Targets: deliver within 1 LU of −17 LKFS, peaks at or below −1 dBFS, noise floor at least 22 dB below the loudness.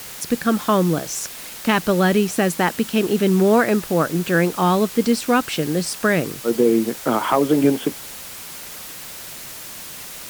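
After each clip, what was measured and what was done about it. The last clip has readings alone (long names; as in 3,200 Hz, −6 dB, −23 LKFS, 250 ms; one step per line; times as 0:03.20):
background noise floor −35 dBFS; target noise floor −42 dBFS; integrated loudness −19.5 LKFS; sample peak −5.5 dBFS; target loudness −17.0 LKFS
→ broadband denoise 7 dB, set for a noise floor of −35 dBFS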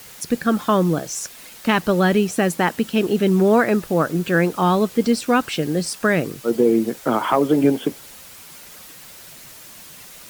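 background noise floor −42 dBFS; integrated loudness −19.5 LKFS; sample peak −5.5 dBFS; target loudness −17.0 LKFS
→ level +2.5 dB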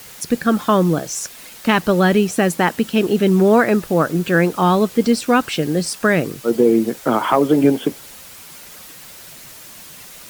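integrated loudness −17.0 LKFS; sample peak −3.0 dBFS; background noise floor −39 dBFS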